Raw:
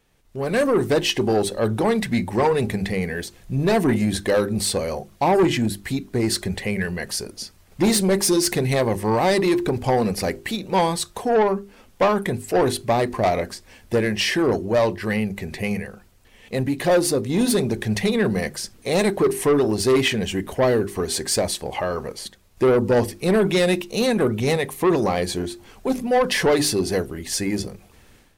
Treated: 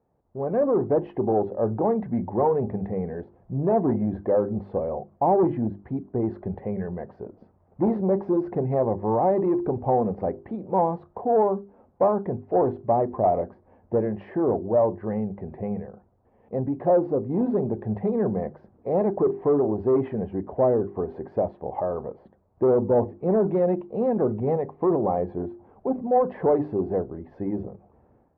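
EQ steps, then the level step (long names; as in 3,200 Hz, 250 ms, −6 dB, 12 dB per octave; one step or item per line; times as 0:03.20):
high-pass filter 67 Hz
transistor ladder low-pass 980 Hz, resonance 35%
+3.0 dB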